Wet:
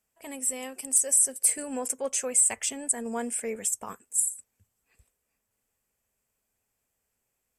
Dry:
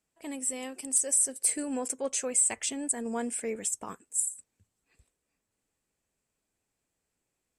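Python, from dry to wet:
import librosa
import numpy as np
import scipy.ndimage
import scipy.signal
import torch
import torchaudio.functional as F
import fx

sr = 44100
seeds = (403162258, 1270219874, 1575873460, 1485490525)

y = fx.graphic_eq_31(x, sr, hz=(160, 315, 4000, 12500), db=(-7, -11, -6, 11))
y = y * librosa.db_to_amplitude(2.0)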